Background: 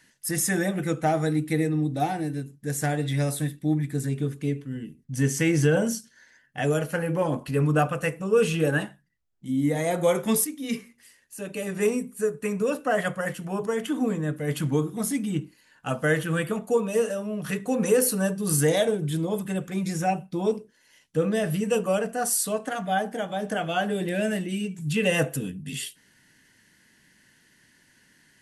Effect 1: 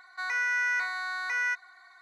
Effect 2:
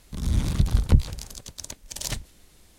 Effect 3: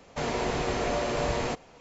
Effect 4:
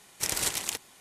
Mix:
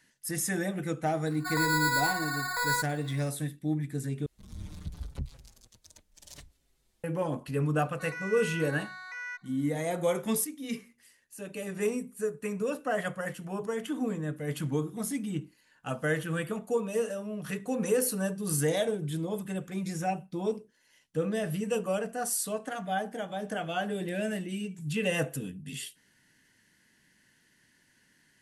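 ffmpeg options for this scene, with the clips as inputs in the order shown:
-filter_complex "[1:a]asplit=2[s0][s1];[0:a]volume=0.501[s2];[s0]acrusher=samples=15:mix=1:aa=0.000001[s3];[2:a]asplit=2[s4][s5];[s5]adelay=5.8,afreqshift=-0.73[s6];[s4][s6]amix=inputs=2:normalize=1[s7];[s2]asplit=2[s8][s9];[s8]atrim=end=4.264[s10];[s7]atrim=end=2.78,asetpts=PTS-STARTPTS,volume=0.178[s11];[s9]atrim=start=7.036[s12];[s3]atrim=end=2.01,asetpts=PTS-STARTPTS,afade=t=in:d=0.004:c=hsin,afade=t=out:st=2.006:d=0.004:c=hsin,adelay=1270[s13];[s1]atrim=end=2.01,asetpts=PTS-STARTPTS,volume=0.299,afade=t=in:d=0.004:c=hsin,afade=t=out:st=2.006:d=0.004:c=hsin,adelay=7820[s14];[s10][s11]acrossfade=d=0.004:c1=hsin:c2=hsin[s15];[s15][s12]acrossfade=d=0.004:c1=hsin:c2=hsin[s16];[s16][s13][s14]amix=inputs=3:normalize=0"

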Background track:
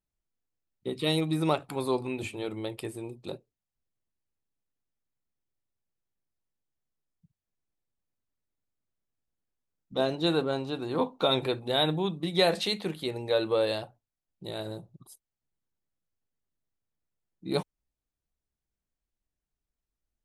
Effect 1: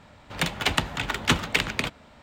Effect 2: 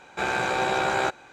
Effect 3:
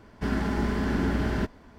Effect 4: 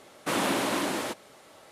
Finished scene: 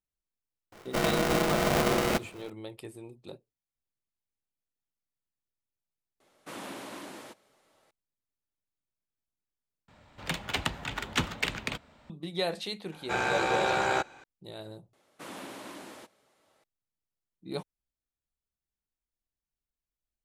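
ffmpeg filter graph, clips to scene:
-filter_complex "[4:a]asplit=2[s0][s1];[0:a]volume=0.447[s2];[3:a]aeval=exprs='val(0)*sgn(sin(2*PI*420*n/s))':c=same[s3];[s2]asplit=3[s4][s5][s6];[s4]atrim=end=9.884[s7];[1:a]atrim=end=2.22,asetpts=PTS-STARTPTS,volume=0.447[s8];[s5]atrim=start=12.096:end=14.934[s9];[s1]atrim=end=1.71,asetpts=PTS-STARTPTS,volume=0.158[s10];[s6]atrim=start=16.636[s11];[s3]atrim=end=1.78,asetpts=PTS-STARTPTS,volume=0.944,afade=t=in:d=0.004:c=hsin,afade=t=out:st=1.776:d=0.004:c=hsin,adelay=720[s12];[s0]atrim=end=1.71,asetpts=PTS-STARTPTS,volume=0.188,afade=t=in:d=0.004:c=hsin,afade=t=out:st=1.706:d=0.004:c=hsin,adelay=6200[s13];[2:a]atrim=end=1.32,asetpts=PTS-STARTPTS,volume=0.708,afade=t=in:d=0.004:c=hsin,afade=t=out:st=1.316:d=0.004:c=hsin,adelay=12920[s14];[s7][s8]acrossfade=d=0.004:c1=hsin:c2=hsin[s15];[s15][s9]acrossfade=d=0.004:c1=hsin:c2=hsin[s16];[s16][s10]acrossfade=d=0.004:c1=hsin:c2=hsin[s17];[s17][s11]acrossfade=d=0.004:c1=hsin:c2=hsin[s18];[s18][s12][s13][s14]amix=inputs=4:normalize=0"

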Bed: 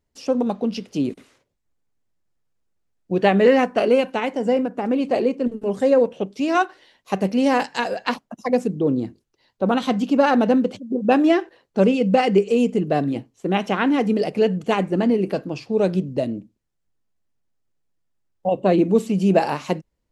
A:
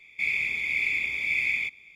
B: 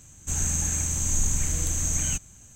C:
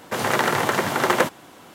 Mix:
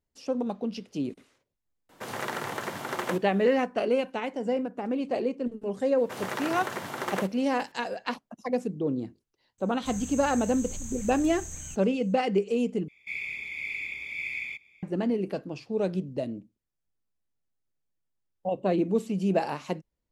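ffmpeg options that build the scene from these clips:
-filter_complex "[3:a]asplit=2[s0][s1];[0:a]volume=0.376,asplit=2[s2][s3];[s2]atrim=end=12.884[s4];[1:a]atrim=end=1.95,asetpts=PTS-STARTPTS,volume=0.398[s5];[s3]atrim=start=14.826[s6];[s0]atrim=end=1.74,asetpts=PTS-STARTPTS,volume=0.237,afade=t=in:d=0.004:c=hsin,afade=t=out:st=1.736:d=0.004:c=hsin,adelay=1890[s7];[s1]atrim=end=1.74,asetpts=PTS-STARTPTS,volume=0.224,afade=t=in:d=0.004:c=hsin,afade=t=out:st=1.736:d=0.004:c=hsin,adelay=5980[s8];[2:a]atrim=end=2.55,asetpts=PTS-STARTPTS,volume=0.2,afade=t=in:d=0.004:c=hsin,afade=t=out:st=2.546:d=0.004:c=hsin,adelay=9580[s9];[s4][s5]acrossfade=d=0.004:c1=hsin:c2=hsin[s10];[s10][s6]acrossfade=d=0.004:c1=hsin:c2=hsin[s11];[s11][s7][s8][s9]amix=inputs=4:normalize=0"

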